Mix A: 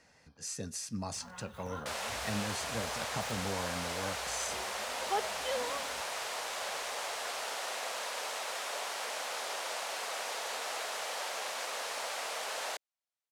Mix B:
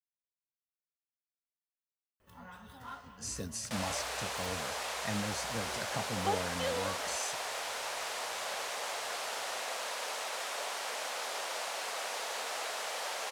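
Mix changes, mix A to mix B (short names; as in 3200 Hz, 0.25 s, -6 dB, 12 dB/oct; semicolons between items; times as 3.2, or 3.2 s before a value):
speech: entry +2.80 s; first sound: entry +1.15 s; second sound: entry +1.85 s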